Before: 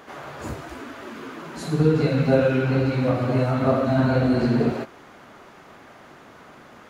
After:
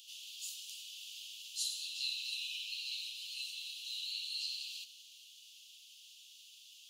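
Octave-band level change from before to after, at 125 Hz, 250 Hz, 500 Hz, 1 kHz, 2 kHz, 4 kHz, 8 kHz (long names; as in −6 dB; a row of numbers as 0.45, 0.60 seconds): below −40 dB, below −40 dB, below −40 dB, below −40 dB, −15.5 dB, +4.0 dB, can't be measured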